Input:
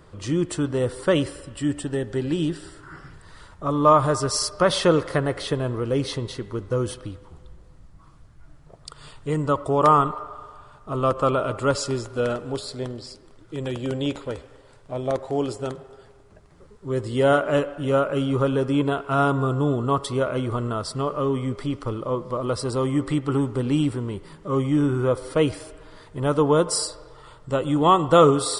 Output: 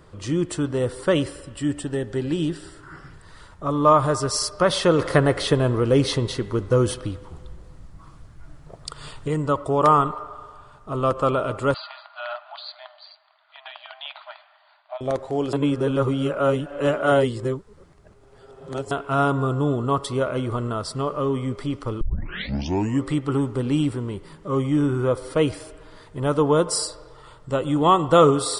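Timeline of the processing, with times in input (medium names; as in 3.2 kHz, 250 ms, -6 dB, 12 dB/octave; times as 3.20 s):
4.99–9.28 s: gain +5.5 dB
11.74–15.01 s: brick-wall FIR band-pass 600–4800 Hz
15.53–18.91 s: reverse
22.01 s: tape start 1.02 s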